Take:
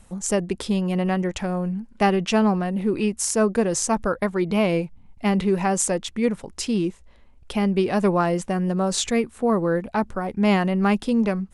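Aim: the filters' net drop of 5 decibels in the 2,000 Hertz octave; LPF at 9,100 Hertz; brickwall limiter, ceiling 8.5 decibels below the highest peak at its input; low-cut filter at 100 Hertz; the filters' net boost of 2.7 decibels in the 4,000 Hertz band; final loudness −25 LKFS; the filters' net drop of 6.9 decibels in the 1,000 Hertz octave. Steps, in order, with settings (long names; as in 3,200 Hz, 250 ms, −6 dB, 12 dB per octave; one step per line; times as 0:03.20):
high-pass filter 100 Hz
low-pass filter 9,100 Hz
parametric band 1,000 Hz −9 dB
parametric band 2,000 Hz −5.5 dB
parametric band 4,000 Hz +6 dB
level +0.5 dB
brickwall limiter −15.5 dBFS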